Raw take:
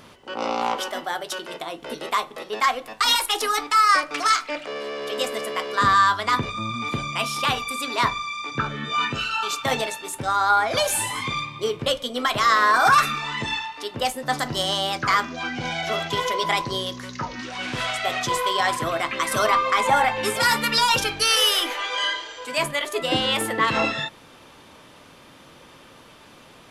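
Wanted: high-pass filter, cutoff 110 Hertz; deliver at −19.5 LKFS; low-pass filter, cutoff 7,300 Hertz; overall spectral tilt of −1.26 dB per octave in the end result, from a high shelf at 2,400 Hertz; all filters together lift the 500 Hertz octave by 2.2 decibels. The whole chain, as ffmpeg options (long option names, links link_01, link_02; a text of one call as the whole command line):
ffmpeg -i in.wav -af "highpass=110,lowpass=7300,equalizer=frequency=500:width_type=o:gain=3,highshelf=frequency=2400:gain=-6,volume=4.5dB" out.wav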